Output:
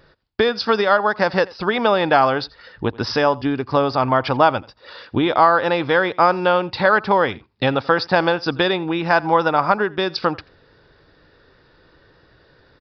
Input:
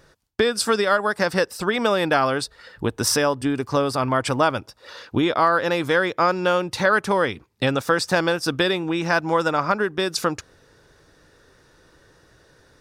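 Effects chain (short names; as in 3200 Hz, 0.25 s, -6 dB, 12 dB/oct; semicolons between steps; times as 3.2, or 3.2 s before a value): dynamic EQ 820 Hz, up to +7 dB, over -36 dBFS, Q 2.2; downsampling 11025 Hz; echo 85 ms -23 dB; gain +1.5 dB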